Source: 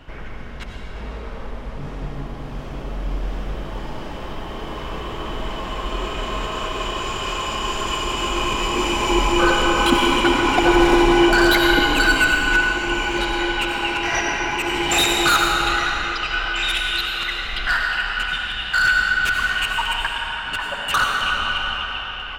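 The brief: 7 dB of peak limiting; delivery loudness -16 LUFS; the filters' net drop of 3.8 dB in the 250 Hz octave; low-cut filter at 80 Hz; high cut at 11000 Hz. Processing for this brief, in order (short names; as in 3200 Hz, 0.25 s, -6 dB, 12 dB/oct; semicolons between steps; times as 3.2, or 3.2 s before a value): HPF 80 Hz; LPF 11000 Hz; bell 250 Hz -6.5 dB; gain +5.5 dB; limiter -6.5 dBFS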